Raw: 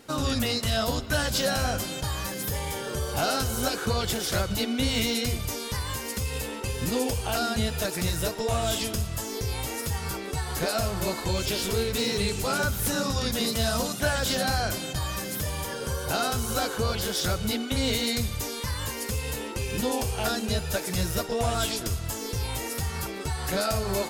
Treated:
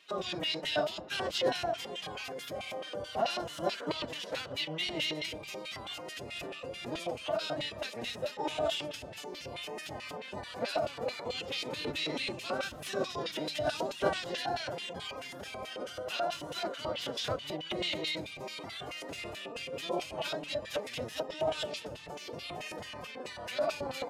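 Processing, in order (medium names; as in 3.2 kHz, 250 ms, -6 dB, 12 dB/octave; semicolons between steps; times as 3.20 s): octave divider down 1 oct, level +2 dB; LFO band-pass square 4.6 Hz 620–2800 Hz; formant-preserving pitch shift +5 st; trim +1.5 dB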